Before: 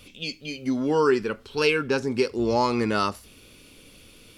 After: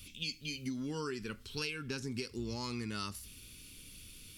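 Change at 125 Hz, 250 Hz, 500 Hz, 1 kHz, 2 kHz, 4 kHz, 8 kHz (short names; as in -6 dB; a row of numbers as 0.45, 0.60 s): -8.0, -14.0, -20.5, -20.0, -14.0, -8.0, -4.0 dB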